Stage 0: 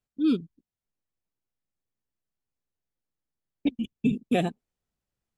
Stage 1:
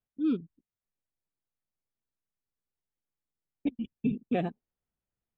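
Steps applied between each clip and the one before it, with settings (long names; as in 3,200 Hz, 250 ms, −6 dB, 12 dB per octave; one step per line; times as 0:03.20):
low-pass filter 2,300 Hz 12 dB per octave
level −4.5 dB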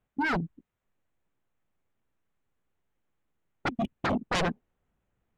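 adaptive Wiener filter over 9 samples
sine wavefolder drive 17 dB, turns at −17 dBFS
level −6.5 dB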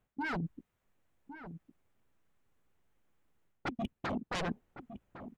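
reversed playback
downward compressor 8 to 1, threshold −38 dBFS, peak gain reduction 12 dB
reversed playback
slap from a distant wall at 190 metres, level −11 dB
level +3.5 dB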